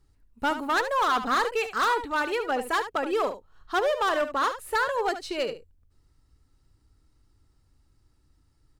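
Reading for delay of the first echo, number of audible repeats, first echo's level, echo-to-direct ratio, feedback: 73 ms, 1, -11.0 dB, -11.0 dB, no regular repeats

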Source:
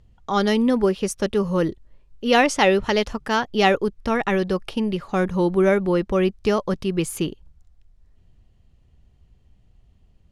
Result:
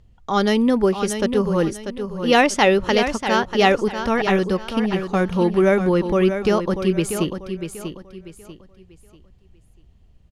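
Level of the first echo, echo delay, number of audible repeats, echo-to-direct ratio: -8.5 dB, 641 ms, 3, -8.0 dB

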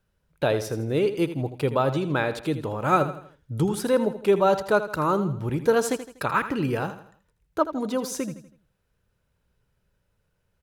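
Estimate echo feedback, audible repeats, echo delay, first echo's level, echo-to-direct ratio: 41%, 3, 81 ms, -12.0 dB, -11.0 dB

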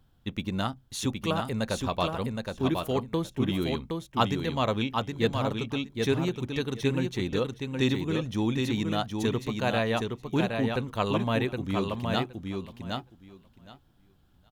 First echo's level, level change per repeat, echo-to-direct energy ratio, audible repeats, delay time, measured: -4.5 dB, -16.5 dB, -4.5 dB, 2, 768 ms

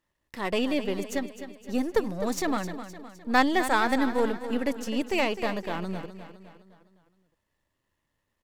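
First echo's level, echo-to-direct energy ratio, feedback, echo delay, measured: -11.5 dB, -10.5 dB, 50%, 257 ms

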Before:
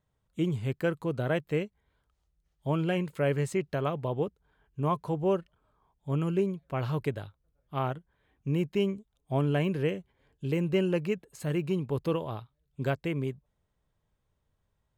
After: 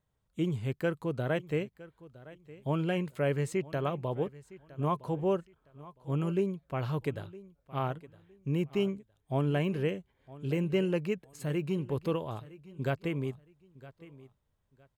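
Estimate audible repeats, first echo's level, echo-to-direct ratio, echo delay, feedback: 2, -19.0 dB, -19.0 dB, 962 ms, 25%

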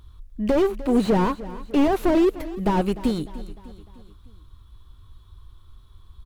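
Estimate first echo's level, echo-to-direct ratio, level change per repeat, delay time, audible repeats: -16.5 dB, -15.5 dB, -6.0 dB, 301 ms, 4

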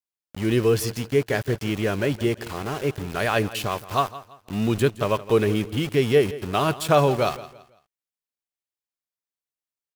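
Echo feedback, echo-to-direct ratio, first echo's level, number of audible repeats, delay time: 32%, -16.0 dB, -16.5 dB, 2, 167 ms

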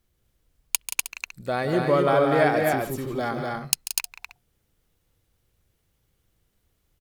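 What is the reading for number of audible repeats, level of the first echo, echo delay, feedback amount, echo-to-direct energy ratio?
4, -11.5 dB, 140 ms, no regular repeats, -1.5 dB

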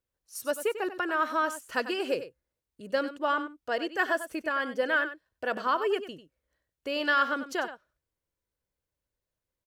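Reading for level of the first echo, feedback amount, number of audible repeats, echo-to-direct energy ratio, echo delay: -12.0 dB, no regular repeats, 1, -12.0 dB, 95 ms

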